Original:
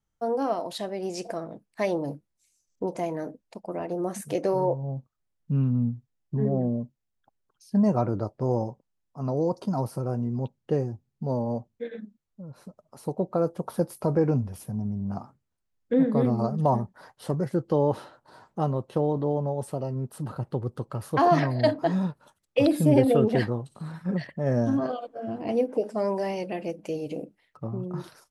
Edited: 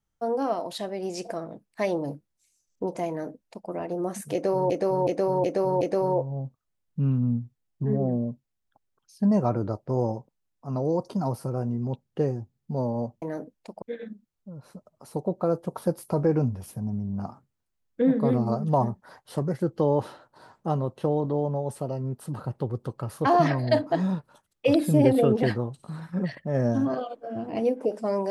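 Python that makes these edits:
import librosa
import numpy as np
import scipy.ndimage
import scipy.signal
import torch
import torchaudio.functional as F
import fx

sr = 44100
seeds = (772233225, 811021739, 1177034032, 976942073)

y = fx.edit(x, sr, fx.duplicate(start_s=3.09, length_s=0.6, to_s=11.74),
    fx.repeat(start_s=4.33, length_s=0.37, count=5), tone=tone)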